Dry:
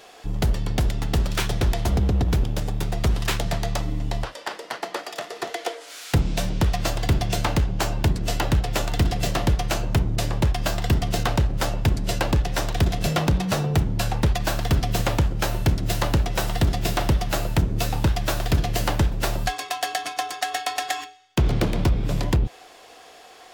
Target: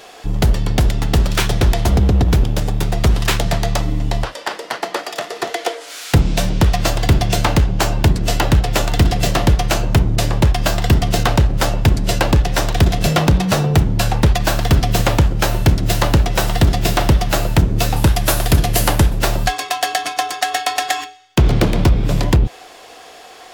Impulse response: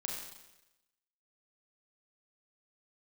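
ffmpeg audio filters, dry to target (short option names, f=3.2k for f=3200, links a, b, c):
-filter_complex "[0:a]asettb=1/sr,asplit=3[a][b][c];[a]atrim=end=17.964[d];[b]atrim=start=17.96:end=19.19,asetpts=PTS-STARTPTS,afade=t=in:d=0.004:c=qsin,afade=t=out:st=1.226:d=0.004:c=qsin,equalizer=f=11k:t=o:w=0.78:g=10.5[e];[c]atrim=start=19.186[f];[d][e]acrossfade=d=0.004:c1=hsin:c2=qsin[g];[g][f]acrossfade=d=0.004:c1=qsin:c2=hsin,volume=7.5dB"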